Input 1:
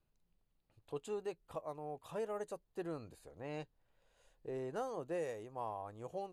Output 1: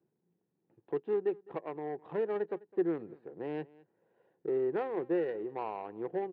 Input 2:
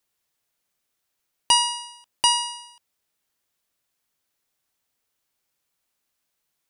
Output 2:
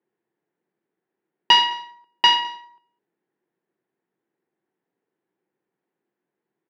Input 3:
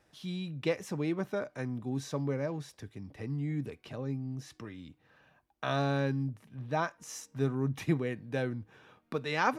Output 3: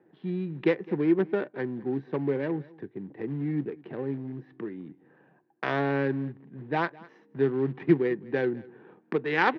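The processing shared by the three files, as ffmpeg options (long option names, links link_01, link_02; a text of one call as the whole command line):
ffmpeg -i in.wav -filter_complex "[0:a]asplit=2[link_01][link_02];[link_02]acompressor=threshold=-48dB:ratio=4,volume=0dB[link_03];[link_01][link_03]amix=inputs=2:normalize=0,acrusher=bits=5:mode=log:mix=0:aa=0.000001,adynamicsmooth=sensitivity=2.5:basefreq=740,highpass=frequency=170:width=0.5412,highpass=frequency=170:width=1.3066,equalizer=frequency=250:width_type=q:width=4:gain=-5,equalizer=frequency=360:width_type=q:width=4:gain=8,equalizer=frequency=610:width_type=q:width=4:gain=-8,equalizer=frequency=1200:width_type=q:width=4:gain=-6,equalizer=frequency=1800:width_type=q:width=4:gain=6,lowpass=frequency=4100:width=0.5412,lowpass=frequency=4100:width=1.3066,aecho=1:1:208:0.075,volume=5.5dB" out.wav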